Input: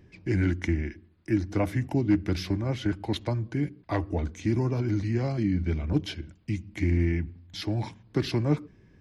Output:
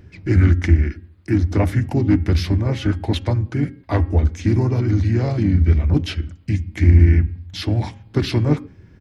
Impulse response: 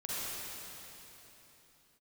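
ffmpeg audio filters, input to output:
-filter_complex "[0:a]equalizer=f=85:w=2.2:g=9,asplit=2[a][b];[b]asetrate=37084,aresample=44100,atempo=1.18921,volume=-6dB[c];[a][c]amix=inputs=2:normalize=0,asplit=2[d][e];[e]asoftclip=type=tanh:threshold=-24dB,volume=-11dB[f];[d][f]amix=inputs=2:normalize=0,bandreject=f=270.4:t=h:w=4,bandreject=f=540.8:t=h:w=4,bandreject=f=811.2:t=h:w=4,bandreject=f=1.0816k:t=h:w=4,bandreject=f=1.352k:t=h:w=4,bandreject=f=1.6224k:t=h:w=4,bandreject=f=1.8928k:t=h:w=4,bandreject=f=2.1632k:t=h:w=4,bandreject=f=2.4336k:t=h:w=4,bandreject=f=2.704k:t=h:w=4,bandreject=f=2.9744k:t=h:w=4,bandreject=f=3.2448k:t=h:w=4,volume=4.5dB"

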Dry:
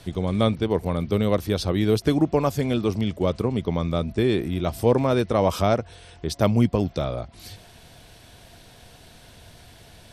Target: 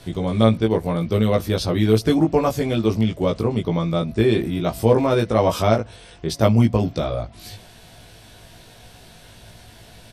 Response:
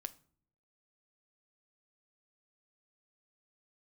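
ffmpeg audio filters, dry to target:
-filter_complex "[0:a]asplit=2[a][b];[b]adelay=18,volume=-2.5dB[c];[a][c]amix=inputs=2:normalize=0,asplit=2[d][e];[1:a]atrim=start_sample=2205[f];[e][f]afir=irnorm=-1:irlink=0,volume=-5.5dB[g];[d][g]amix=inputs=2:normalize=0,volume=-1.5dB"

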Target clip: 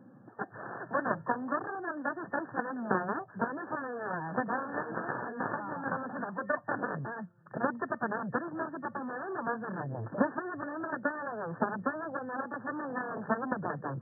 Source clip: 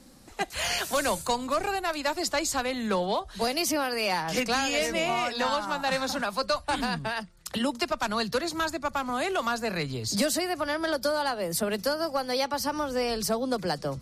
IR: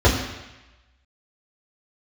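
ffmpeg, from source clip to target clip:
-af "lowshelf=f=140:g=10,aeval=exprs='0.282*(cos(1*acos(clip(val(0)/0.282,-1,1)))-cos(1*PI/2))+0.0178*(cos(3*acos(clip(val(0)/0.282,-1,1)))-cos(3*PI/2))+0.00398*(cos(6*acos(clip(val(0)/0.282,-1,1)))-cos(6*PI/2))+0.0631*(cos(7*acos(clip(val(0)/0.282,-1,1)))-cos(7*PI/2))':c=same,afftfilt=real='re*between(b*sr/4096,100,1800)':imag='im*between(b*sr/4096,100,1800)':win_size=4096:overlap=0.75"

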